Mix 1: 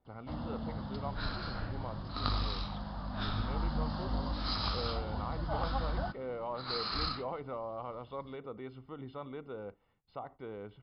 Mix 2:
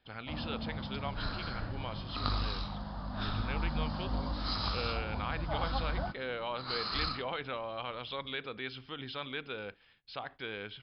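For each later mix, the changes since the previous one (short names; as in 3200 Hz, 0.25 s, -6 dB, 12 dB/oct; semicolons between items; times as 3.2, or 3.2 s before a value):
speech: remove polynomial smoothing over 65 samples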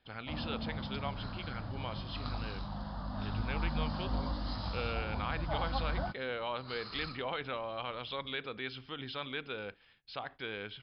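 second sound -10.5 dB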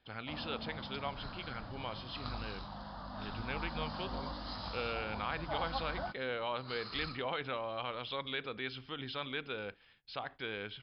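first sound: add low shelf 270 Hz -10.5 dB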